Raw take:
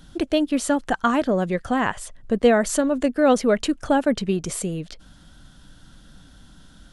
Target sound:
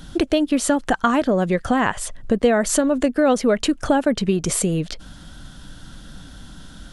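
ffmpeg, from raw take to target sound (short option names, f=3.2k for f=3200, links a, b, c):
-af "acompressor=threshold=-26dB:ratio=2.5,volume=8.5dB"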